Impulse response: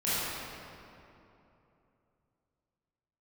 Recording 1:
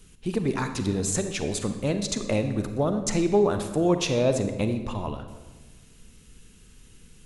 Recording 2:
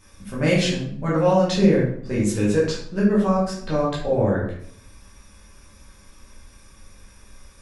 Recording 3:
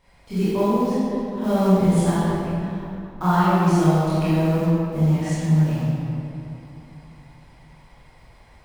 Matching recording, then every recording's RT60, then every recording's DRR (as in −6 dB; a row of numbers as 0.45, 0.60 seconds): 3; 1.3, 0.65, 3.0 seconds; 7.5, −7.5, −13.0 decibels